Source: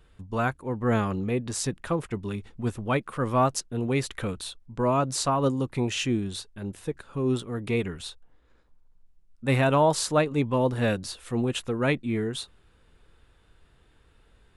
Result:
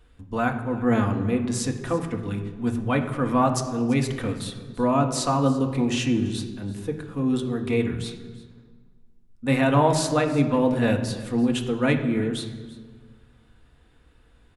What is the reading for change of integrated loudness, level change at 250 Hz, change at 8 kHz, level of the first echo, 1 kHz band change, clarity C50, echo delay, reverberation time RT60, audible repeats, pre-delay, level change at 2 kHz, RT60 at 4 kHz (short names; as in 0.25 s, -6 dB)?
+3.0 dB, +5.5 dB, +0.5 dB, -19.5 dB, +2.0 dB, 9.0 dB, 0.336 s, 1.5 s, 1, 3 ms, +2.0 dB, 1.1 s